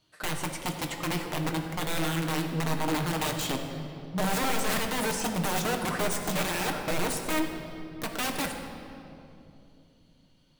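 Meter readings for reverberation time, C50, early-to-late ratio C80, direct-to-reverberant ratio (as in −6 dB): 2.8 s, 5.0 dB, 6.0 dB, 2.0 dB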